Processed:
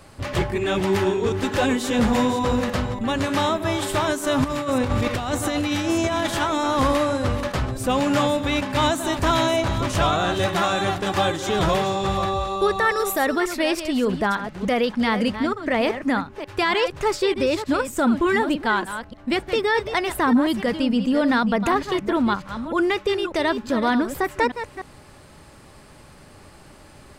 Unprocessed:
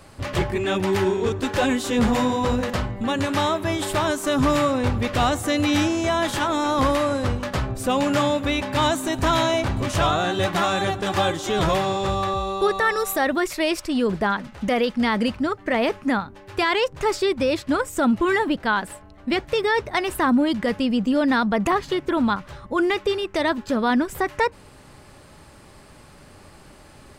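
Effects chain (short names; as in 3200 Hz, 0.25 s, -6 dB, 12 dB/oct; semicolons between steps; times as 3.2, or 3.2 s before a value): reverse delay 0.299 s, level -10 dB; 4.44–6.27 negative-ratio compressor -22 dBFS, ratio -0.5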